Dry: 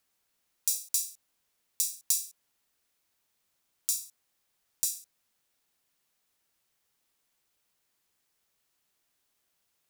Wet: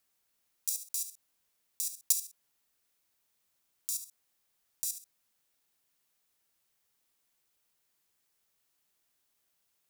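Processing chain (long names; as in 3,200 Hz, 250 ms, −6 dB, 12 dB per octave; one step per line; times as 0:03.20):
high-shelf EQ 8,600 Hz +4 dB
output level in coarse steps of 11 dB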